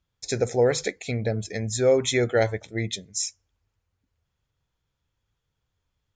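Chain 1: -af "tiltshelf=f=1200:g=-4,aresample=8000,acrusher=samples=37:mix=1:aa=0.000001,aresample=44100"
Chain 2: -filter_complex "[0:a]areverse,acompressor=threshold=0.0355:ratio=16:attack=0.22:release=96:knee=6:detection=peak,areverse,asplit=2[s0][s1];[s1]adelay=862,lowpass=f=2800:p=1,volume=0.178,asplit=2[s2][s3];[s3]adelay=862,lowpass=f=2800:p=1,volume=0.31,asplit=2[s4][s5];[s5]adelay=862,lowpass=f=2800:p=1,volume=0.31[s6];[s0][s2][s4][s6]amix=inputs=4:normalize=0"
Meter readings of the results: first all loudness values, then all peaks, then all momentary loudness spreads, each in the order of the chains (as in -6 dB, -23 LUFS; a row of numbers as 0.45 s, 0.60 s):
-30.0 LUFS, -36.5 LUFS; -11.0 dBFS, -26.0 dBFS; 12 LU, 19 LU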